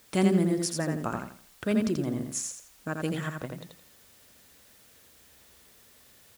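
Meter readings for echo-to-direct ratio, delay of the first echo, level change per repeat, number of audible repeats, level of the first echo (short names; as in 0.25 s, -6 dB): -3.5 dB, 84 ms, -10.5 dB, 3, -4.0 dB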